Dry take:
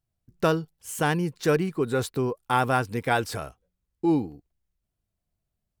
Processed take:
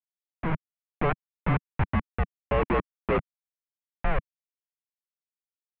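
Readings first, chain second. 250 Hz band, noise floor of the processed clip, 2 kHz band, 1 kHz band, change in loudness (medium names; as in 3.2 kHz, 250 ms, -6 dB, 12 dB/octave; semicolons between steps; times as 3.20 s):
-6.0 dB, under -85 dBFS, -4.5 dB, -5.0 dB, -4.0 dB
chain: level held to a coarse grid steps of 24 dB; hum 50 Hz, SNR 20 dB; Schmitt trigger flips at -31.5 dBFS; mistuned SSB -310 Hz 160–2700 Hz; level rider gain up to 10.5 dB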